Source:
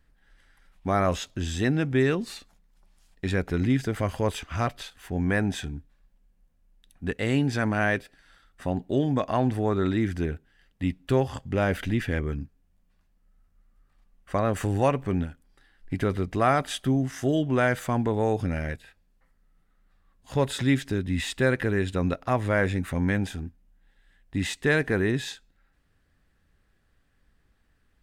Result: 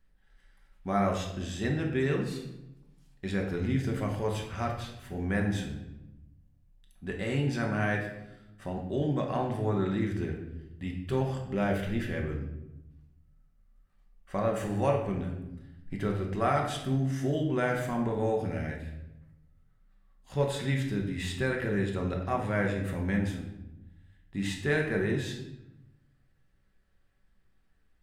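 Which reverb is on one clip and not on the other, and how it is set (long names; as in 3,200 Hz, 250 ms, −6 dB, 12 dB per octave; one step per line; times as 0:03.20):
rectangular room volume 330 cubic metres, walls mixed, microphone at 1.1 metres
level −8 dB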